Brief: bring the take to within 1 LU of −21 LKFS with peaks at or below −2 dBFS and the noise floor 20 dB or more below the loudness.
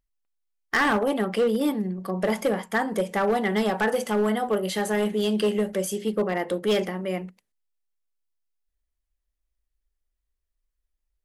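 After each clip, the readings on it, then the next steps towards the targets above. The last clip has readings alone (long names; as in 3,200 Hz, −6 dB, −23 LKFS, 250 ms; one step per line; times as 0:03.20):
share of clipped samples 1.1%; peaks flattened at −17.0 dBFS; integrated loudness −25.0 LKFS; sample peak −17.0 dBFS; target loudness −21.0 LKFS
→ clipped peaks rebuilt −17 dBFS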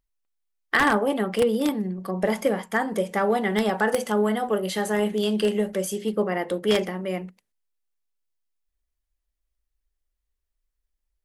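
share of clipped samples 0.0%; integrated loudness −24.5 LKFS; sample peak −8.0 dBFS; target loudness −21.0 LKFS
→ level +3.5 dB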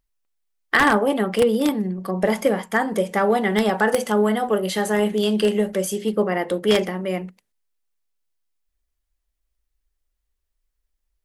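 integrated loudness −21.0 LKFS; sample peak −4.5 dBFS; background noise floor −77 dBFS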